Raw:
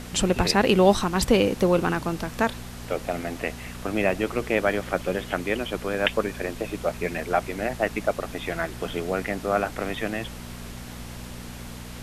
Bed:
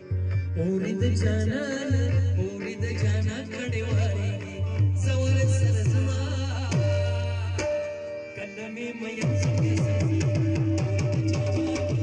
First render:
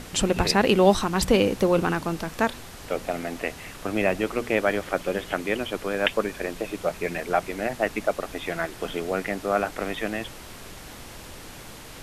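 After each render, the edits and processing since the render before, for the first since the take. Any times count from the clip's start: de-hum 60 Hz, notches 4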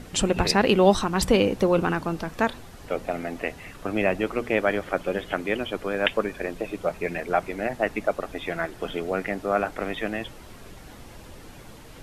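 denoiser 8 dB, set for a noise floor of -42 dBFS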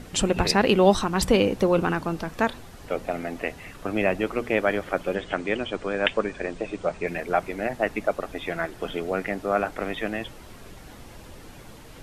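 5.15–7.07 steep low-pass 9100 Hz 96 dB/oct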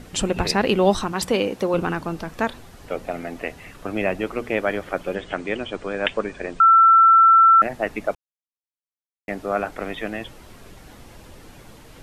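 1.12–1.74 HPF 240 Hz 6 dB/oct; 6.6–7.62 bleep 1340 Hz -9 dBFS; 8.15–9.28 mute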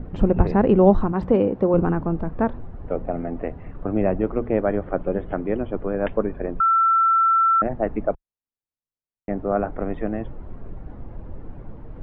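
LPF 1200 Hz 12 dB/oct; tilt -2.5 dB/oct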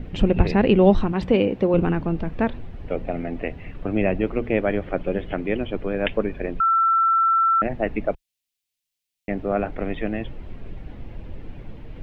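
resonant high shelf 1800 Hz +12.5 dB, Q 1.5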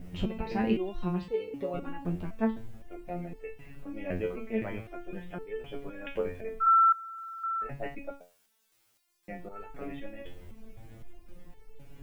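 requantised 10-bit, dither triangular; stepped resonator 3.9 Hz 89–440 Hz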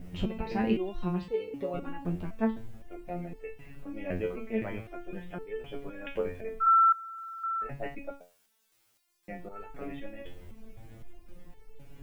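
nothing audible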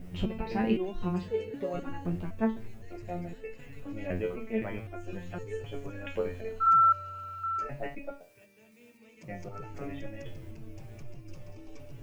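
add bed -24 dB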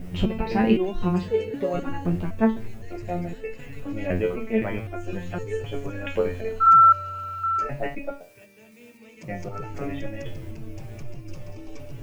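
gain +8 dB

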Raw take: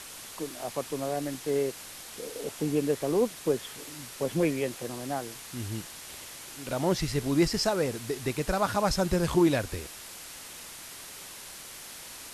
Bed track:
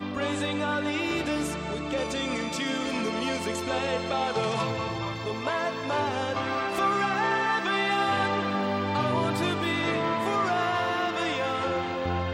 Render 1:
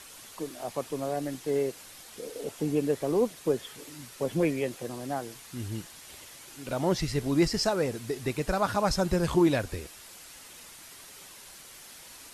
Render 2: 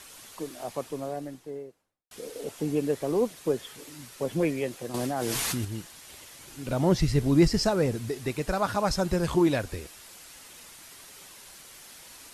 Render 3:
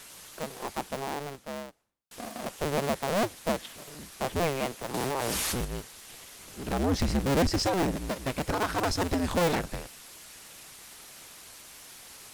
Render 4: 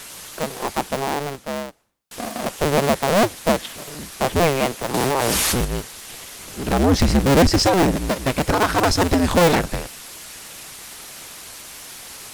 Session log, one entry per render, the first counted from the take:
denoiser 6 dB, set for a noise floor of -45 dBFS
0.62–2.11 studio fade out; 4.94–5.65 fast leveller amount 100%; 6.39–8.09 low shelf 250 Hz +9.5 dB
cycle switcher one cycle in 2, inverted; soft clip -19.5 dBFS, distortion -13 dB
gain +10.5 dB

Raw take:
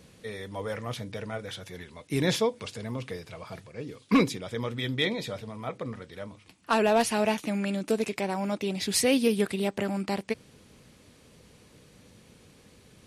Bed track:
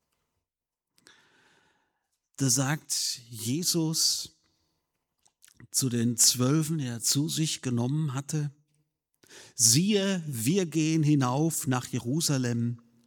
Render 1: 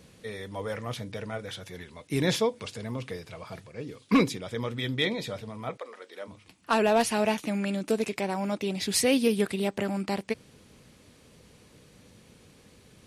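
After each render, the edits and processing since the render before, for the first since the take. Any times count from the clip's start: 5.76–6.27 HPF 560 Hz -> 260 Hz 24 dB/oct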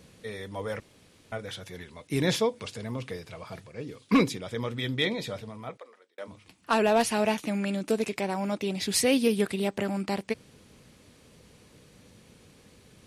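0.8–1.32 room tone; 5.37–6.18 fade out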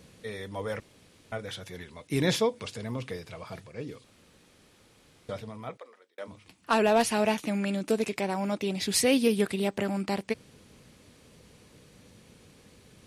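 4.04–5.29 room tone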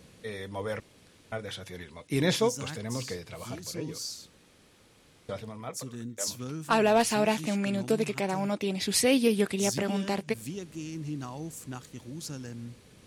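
add bed track -12.5 dB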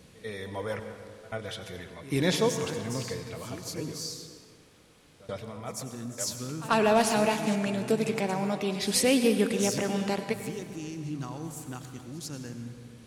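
pre-echo 89 ms -19 dB; plate-style reverb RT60 2.2 s, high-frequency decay 0.5×, pre-delay 80 ms, DRR 7.5 dB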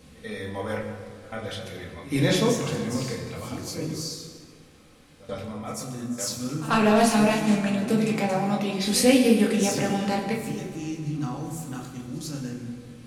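shoebox room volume 360 m³, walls furnished, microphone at 2.1 m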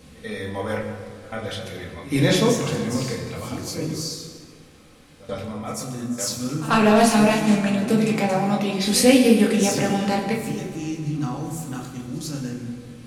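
gain +3.5 dB

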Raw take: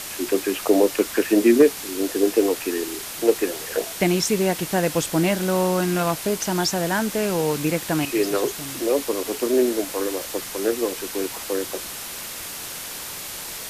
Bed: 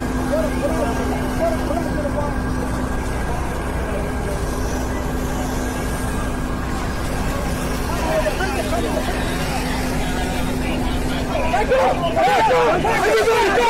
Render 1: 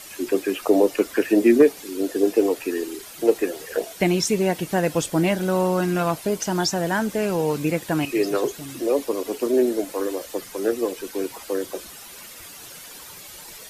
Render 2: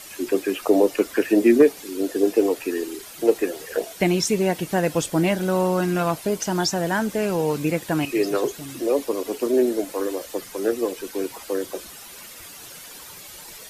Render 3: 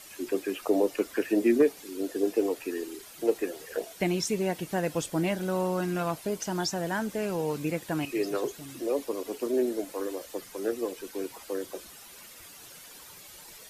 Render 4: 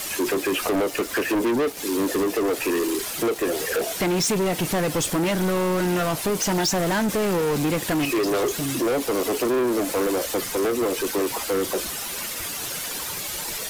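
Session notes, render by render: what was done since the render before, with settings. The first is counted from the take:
denoiser 11 dB, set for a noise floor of -34 dBFS
nothing audible
gain -7.5 dB
compressor 4:1, threshold -29 dBFS, peak gain reduction 11 dB; sample leveller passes 5

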